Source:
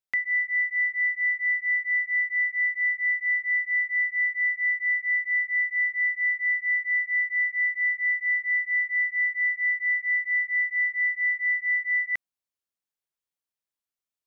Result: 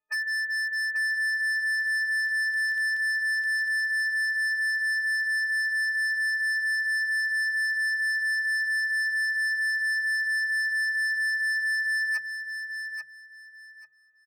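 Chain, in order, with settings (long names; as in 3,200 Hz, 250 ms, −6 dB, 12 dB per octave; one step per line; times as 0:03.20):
every partial snapped to a pitch grid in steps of 6 semitones
low-pass filter 1,800 Hz 24 dB per octave
mains-hum notches 50/100/150 Hz
gate on every frequency bin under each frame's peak −30 dB strong
0:01.79–0:04.09: surface crackle 20 per second −37 dBFS
hard clipping −32 dBFS, distortion −9 dB
repeating echo 838 ms, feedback 22%, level −7.5 dB
level +5 dB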